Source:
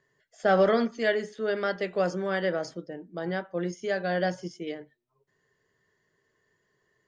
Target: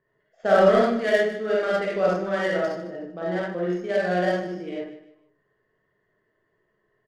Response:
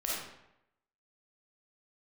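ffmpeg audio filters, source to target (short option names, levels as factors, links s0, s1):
-filter_complex "[1:a]atrim=start_sample=2205,afade=t=out:st=0.19:d=0.01,atrim=end_sample=8820[s0];[0:a][s0]afir=irnorm=-1:irlink=0,adynamicsmooth=sensitivity=3.5:basefreq=2100,aecho=1:1:152|304|456:0.224|0.0694|0.0215"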